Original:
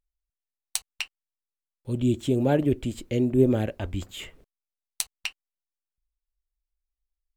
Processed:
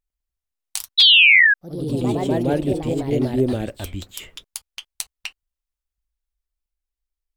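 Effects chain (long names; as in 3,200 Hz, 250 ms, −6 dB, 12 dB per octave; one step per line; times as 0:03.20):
sound drawn into the spectrogram fall, 0:00.98–0:01.54, 1,600–3,500 Hz −14 dBFS
delay with pitch and tempo change per echo 102 ms, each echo +2 semitones, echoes 3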